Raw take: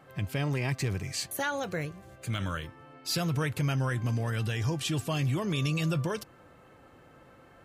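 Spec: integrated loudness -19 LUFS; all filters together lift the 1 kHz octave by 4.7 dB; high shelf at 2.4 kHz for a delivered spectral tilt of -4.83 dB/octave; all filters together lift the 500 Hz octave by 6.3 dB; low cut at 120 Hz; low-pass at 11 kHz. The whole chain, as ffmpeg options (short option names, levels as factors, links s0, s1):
-af "highpass=120,lowpass=11000,equalizer=f=500:t=o:g=6.5,equalizer=f=1000:t=o:g=3.5,highshelf=f=2400:g=3,volume=3.55"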